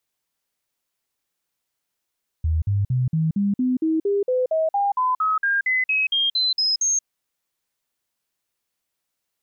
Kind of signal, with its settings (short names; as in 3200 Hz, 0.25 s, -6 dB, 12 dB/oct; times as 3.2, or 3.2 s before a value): stepped sine 79.8 Hz up, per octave 3, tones 20, 0.18 s, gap 0.05 s -17.5 dBFS